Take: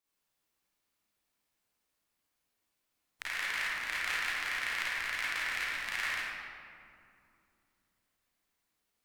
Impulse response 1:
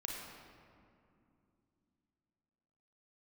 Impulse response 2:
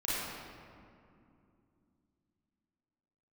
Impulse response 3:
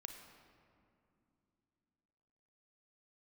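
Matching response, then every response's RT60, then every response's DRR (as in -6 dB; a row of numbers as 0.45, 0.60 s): 2; 2.6, 2.6, 2.8 s; -1.5, -10.0, 4.5 dB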